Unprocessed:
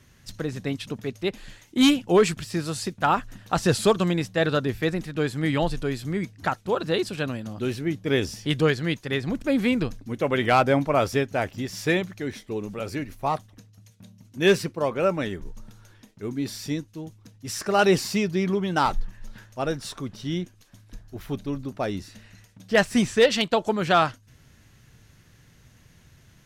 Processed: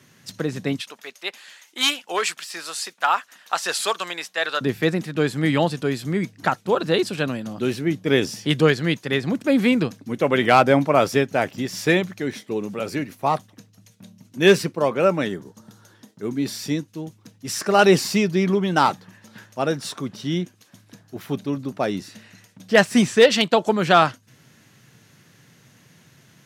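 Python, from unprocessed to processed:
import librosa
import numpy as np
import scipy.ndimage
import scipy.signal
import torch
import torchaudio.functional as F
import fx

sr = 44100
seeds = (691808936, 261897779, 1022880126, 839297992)

y = fx.highpass(x, sr, hz=930.0, slope=12, at=(0.8, 4.61))
y = fx.peak_eq(y, sr, hz=2400.0, db=-8.5, octaves=0.48, at=(15.28, 16.26))
y = scipy.signal.sosfilt(scipy.signal.butter(4, 130.0, 'highpass', fs=sr, output='sos'), y)
y = y * 10.0 ** (4.5 / 20.0)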